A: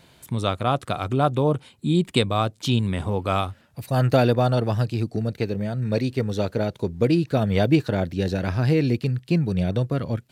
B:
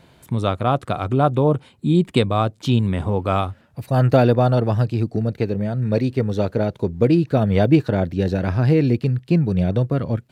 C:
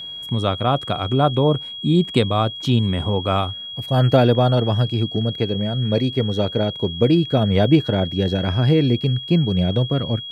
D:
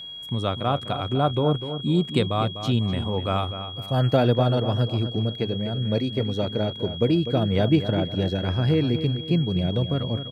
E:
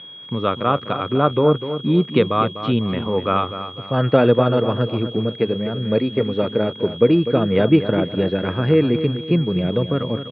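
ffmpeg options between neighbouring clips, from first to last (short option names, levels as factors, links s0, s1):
-af "highshelf=f=2400:g=-9,volume=1.58"
-af "aeval=exprs='val(0)+0.0316*sin(2*PI*3300*n/s)':c=same"
-filter_complex "[0:a]asplit=2[s0][s1];[s1]adelay=249,lowpass=f=2900:p=1,volume=0.316,asplit=2[s2][s3];[s3]adelay=249,lowpass=f=2900:p=1,volume=0.38,asplit=2[s4][s5];[s5]adelay=249,lowpass=f=2900:p=1,volume=0.38,asplit=2[s6][s7];[s7]adelay=249,lowpass=f=2900:p=1,volume=0.38[s8];[s0][s2][s4][s6][s8]amix=inputs=5:normalize=0,volume=0.562"
-af "aeval=exprs='sgn(val(0))*max(abs(val(0))-0.00316,0)':c=same,highpass=160,equalizer=f=460:t=q:w=4:g=4,equalizer=f=730:t=q:w=4:g=-6,equalizer=f=1200:t=q:w=4:g=5,lowpass=f=3000:w=0.5412,lowpass=f=3000:w=1.3066,volume=2"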